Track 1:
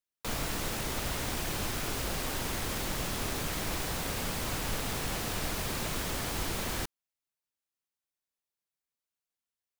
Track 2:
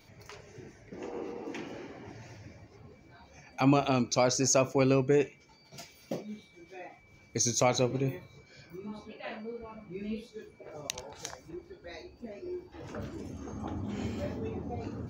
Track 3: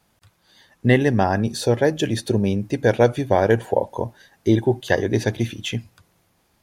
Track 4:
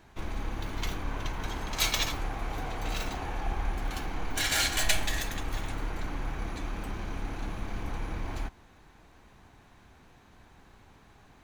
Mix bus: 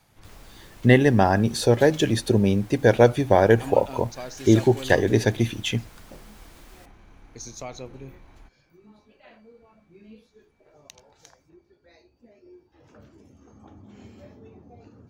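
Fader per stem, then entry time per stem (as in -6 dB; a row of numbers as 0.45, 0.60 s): -18.0, -11.0, +0.5, -16.0 dB; 0.00, 0.00, 0.00, 0.00 s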